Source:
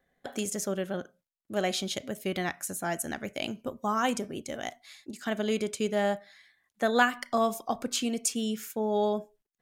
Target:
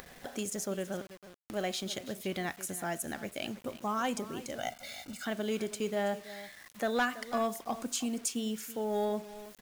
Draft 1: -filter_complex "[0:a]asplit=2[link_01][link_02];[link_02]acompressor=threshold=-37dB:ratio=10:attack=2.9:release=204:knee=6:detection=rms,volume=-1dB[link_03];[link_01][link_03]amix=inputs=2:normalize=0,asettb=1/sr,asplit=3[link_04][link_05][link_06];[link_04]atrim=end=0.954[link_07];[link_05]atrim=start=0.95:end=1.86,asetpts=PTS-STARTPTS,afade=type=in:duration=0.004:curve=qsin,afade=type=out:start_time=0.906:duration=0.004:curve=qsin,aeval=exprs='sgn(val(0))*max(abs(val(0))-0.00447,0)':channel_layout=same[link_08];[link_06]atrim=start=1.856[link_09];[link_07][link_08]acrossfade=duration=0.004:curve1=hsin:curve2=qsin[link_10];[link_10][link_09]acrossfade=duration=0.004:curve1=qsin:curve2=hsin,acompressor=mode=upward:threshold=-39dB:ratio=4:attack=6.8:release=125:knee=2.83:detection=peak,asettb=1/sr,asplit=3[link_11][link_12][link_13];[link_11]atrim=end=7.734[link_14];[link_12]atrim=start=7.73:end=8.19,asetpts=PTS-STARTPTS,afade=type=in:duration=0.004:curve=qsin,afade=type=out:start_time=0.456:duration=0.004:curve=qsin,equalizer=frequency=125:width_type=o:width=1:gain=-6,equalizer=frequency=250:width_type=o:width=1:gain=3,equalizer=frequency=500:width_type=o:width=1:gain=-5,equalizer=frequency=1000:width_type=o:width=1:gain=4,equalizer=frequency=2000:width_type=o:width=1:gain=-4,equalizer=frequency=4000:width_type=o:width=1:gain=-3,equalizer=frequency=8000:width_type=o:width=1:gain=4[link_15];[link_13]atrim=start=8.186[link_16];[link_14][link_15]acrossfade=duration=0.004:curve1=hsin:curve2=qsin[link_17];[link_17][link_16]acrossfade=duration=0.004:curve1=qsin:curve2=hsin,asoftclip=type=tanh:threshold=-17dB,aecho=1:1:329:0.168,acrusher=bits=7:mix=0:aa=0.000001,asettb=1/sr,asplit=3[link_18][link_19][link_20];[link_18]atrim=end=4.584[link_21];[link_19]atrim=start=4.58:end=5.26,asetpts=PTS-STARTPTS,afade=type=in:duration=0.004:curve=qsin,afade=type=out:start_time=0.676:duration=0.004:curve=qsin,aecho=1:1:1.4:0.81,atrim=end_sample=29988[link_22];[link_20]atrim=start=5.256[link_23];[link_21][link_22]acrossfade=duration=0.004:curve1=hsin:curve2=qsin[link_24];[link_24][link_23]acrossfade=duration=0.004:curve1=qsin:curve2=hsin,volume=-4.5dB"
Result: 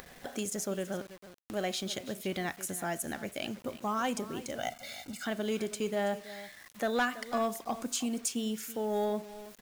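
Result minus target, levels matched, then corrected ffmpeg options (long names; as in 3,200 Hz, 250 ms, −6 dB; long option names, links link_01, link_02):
downward compressor: peak gain reduction −7 dB
-filter_complex "[0:a]asplit=2[link_01][link_02];[link_02]acompressor=threshold=-44.5dB:ratio=10:attack=2.9:release=204:knee=6:detection=rms,volume=-1dB[link_03];[link_01][link_03]amix=inputs=2:normalize=0,asettb=1/sr,asplit=3[link_04][link_05][link_06];[link_04]atrim=end=0.954[link_07];[link_05]atrim=start=0.95:end=1.86,asetpts=PTS-STARTPTS,afade=type=in:duration=0.004:curve=qsin,afade=type=out:start_time=0.906:duration=0.004:curve=qsin,aeval=exprs='sgn(val(0))*max(abs(val(0))-0.00447,0)':channel_layout=same[link_08];[link_06]atrim=start=1.856[link_09];[link_07][link_08]acrossfade=duration=0.004:curve1=hsin:curve2=qsin[link_10];[link_10][link_09]acrossfade=duration=0.004:curve1=qsin:curve2=hsin,acompressor=mode=upward:threshold=-39dB:ratio=4:attack=6.8:release=125:knee=2.83:detection=peak,asettb=1/sr,asplit=3[link_11][link_12][link_13];[link_11]atrim=end=7.734[link_14];[link_12]atrim=start=7.73:end=8.19,asetpts=PTS-STARTPTS,afade=type=in:duration=0.004:curve=qsin,afade=type=out:start_time=0.456:duration=0.004:curve=qsin,equalizer=frequency=125:width_type=o:width=1:gain=-6,equalizer=frequency=250:width_type=o:width=1:gain=3,equalizer=frequency=500:width_type=o:width=1:gain=-5,equalizer=frequency=1000:width_type=o:width=1:gain=4,equalizer=frequency=2000:width_type=o:width=1:gain=-4,equalizer=frequency=4000:width_type=o:width=1:gain=-3,equalizer=frequency=8000:width_type=o:width=1:gain=4[link_15];[link_13]atrim=start=8.186[link_16];[link_14][link_15]acrossfade=duration=0.004:curve1=hsin:curve2=qsin[link_17];[link_17][link_16]acrossfade=duration=0.004:curve1=qsin:curve2=hsin,asoftclip=type=tanh:threshold=-17dB,aecho=1:1:329:0.168,acrusher=bits=7:mix=0:aa=0.000001,asettb=1/sr,asplit=3[link_18][link_19][link_20];[link_18]atrim=end=4.584[link_21];[link_19]atrim=start=4.58:end=5.26,asetpts=PTS-STARTPTS,afade=type=in:duration=0.004:curve=qsin,afade=type=out:start_time=0.676:duration=0.004:curve=qsin,aecho=1:1:1.4:0.81,atrim=end_sample=29988[link_22];[link_20]atrim=start=5.256[link_23];[link_21][link_22]acrossfade=duration=0.004:curve1=hsin:curve2=qsin[link_24];[link_24][link_23]acrossfade=duration=0.004:curve1=qsin:curve2=hsin,volume=-4.5dB"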